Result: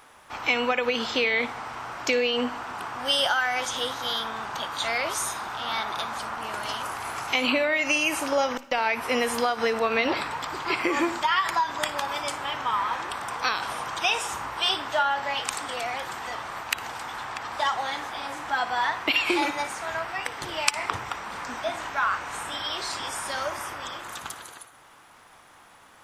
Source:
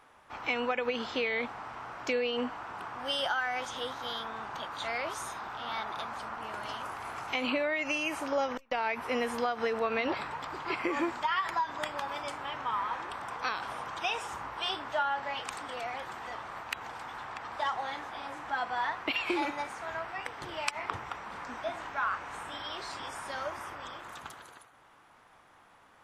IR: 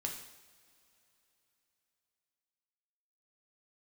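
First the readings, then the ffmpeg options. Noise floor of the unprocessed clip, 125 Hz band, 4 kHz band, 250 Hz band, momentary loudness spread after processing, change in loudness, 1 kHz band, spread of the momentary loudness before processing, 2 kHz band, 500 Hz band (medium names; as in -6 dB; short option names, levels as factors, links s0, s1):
-59 dBFS, +6.0 dB, +10.0 dB, +5.5 dB, 11 LU, +7.5 dB, +6.0 dB, 10 LU, +8.0 dB, +6.0 dB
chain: -filter_complex "[0:a]highshelf=f=3900:g=10.5,asplit=2[s0][s1];[1:a]atrim=start_sample=2205,adelay=57[s2];[s1][s2]afir=irnorm=-1:irlink=0,volume=0.158[s3];[s0][s3]amix=inputs=2:normalize=0,volume=1.88"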